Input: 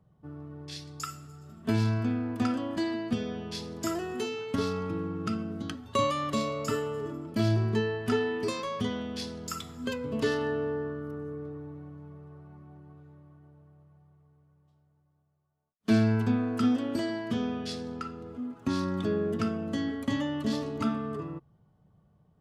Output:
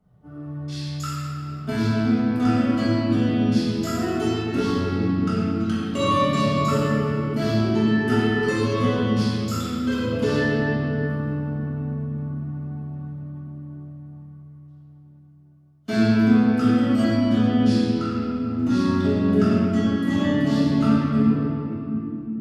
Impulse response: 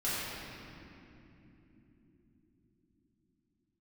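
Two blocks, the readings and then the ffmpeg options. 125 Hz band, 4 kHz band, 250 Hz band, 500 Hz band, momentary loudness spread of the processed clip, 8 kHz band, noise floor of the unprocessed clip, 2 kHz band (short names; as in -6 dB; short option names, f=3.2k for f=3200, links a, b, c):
+10.0 dB, +6.5 dB, +11.0 dB, +6.5 dB, 13 LU, +3.5 dB, -67 dBFS, +9.0 dB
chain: -filter_complex "[1:a]atrim=start_sample=2205[a];[0:a][a]afir=irnorm=-1:irlink=0"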